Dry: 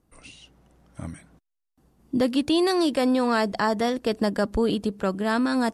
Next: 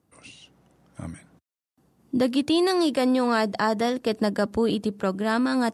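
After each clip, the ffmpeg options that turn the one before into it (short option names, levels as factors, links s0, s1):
-af "highpass=f=81:w=0.5412,highpass=f=81:w=1.3066"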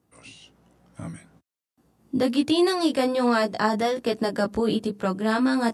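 -af "flanger=delay=16.5:depth=2.5:speed=1.2,volume=1.5"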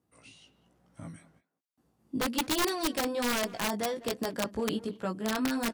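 -filter_complex "[0:a]aeval=exprs='(mod(5.31*val(0)+1,2)-1)/5.31':c=same,asplit=2[s0][s1];[s1]adelay=200,highpass=300,lowpass=3400,asoftclip=type=hard:threshold=0.0668,volume=0.158[s2];[s0][s2]amix=inputs=2:normalize=0,volume=0.398"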